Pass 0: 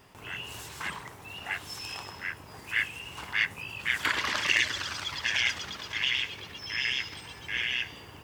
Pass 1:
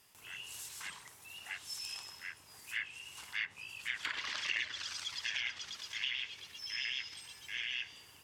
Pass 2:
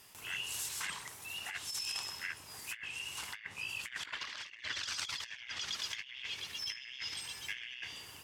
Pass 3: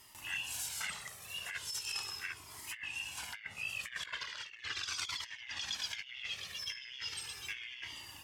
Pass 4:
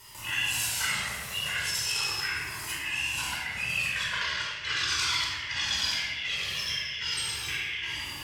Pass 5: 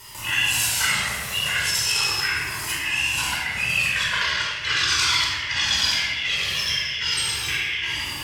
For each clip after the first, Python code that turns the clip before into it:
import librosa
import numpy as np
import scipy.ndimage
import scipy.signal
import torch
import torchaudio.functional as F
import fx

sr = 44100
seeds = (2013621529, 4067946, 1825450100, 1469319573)

y1 = fx.env_lowpass_down(x, sr, base_hz=2600.0, full_db=-23.0)
y1 = scipy.signal.lfilter([1.0, -0.9], [1.0], y1)
y1 = F.gain(torch.from_numpy(y1), 1.0).numpy()
y2 = fx.over_compress(y1, sr, threshold_db=-44.0, ratio=-0.5)
y2 = F.gain(torch.from_numpy(y2), 3.5).numpy()
y3 = fx.comb_cascade(y2, sr, direction='falling', hz=0.38)
y3 = F.gain(torch.from_numpy(y3), 4.0).numpy()
y4 = fx.room_shoebox(y3, sr, seeds[0], volume_m3=1700.0, walls='mixed', distance_m=4.8)
y4 = F.gain(torch.from_numpy(y4), 4.0).numpy()
y5 = y4 + 10.0 ** (-21.0 / 20.0) * np.pad(y4, (int(946 * sr / 1000.0), 0))[:len(y4)]
y5 = F.gain(torch.from_numpy(y5), 7.5).numpy()